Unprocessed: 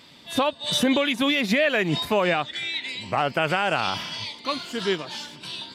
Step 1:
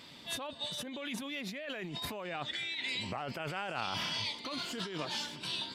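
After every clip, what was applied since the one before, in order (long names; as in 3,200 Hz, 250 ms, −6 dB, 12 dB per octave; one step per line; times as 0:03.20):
brickwall limiter −19.5 dBFS, peak gain reduction 9.5 dB
compressor whose output falls as the input rises −33 dBFS, ratio −1
level −5.5 dB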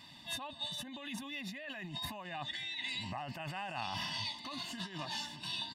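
comb filter 1.1 ms, depth 94%
level −5.5 dB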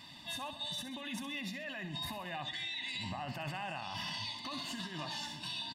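brickwall limiter −33.5 dBFS, peak gain reduction 7 dB
on a send: repeating echo 65 ms, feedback 51%, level −11 dB
on the sum: level +2 dB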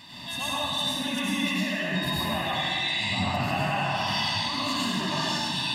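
dense smooth reverb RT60 2 s, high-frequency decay 0.6×, pre-delay 80 ms, DRR −8 dB
level +5 dB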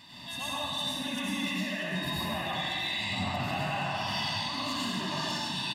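hard clipping −19.5 dBFS, distortion −27 dB
single-tap delay 638 ms −13.5 dB
level −5 dB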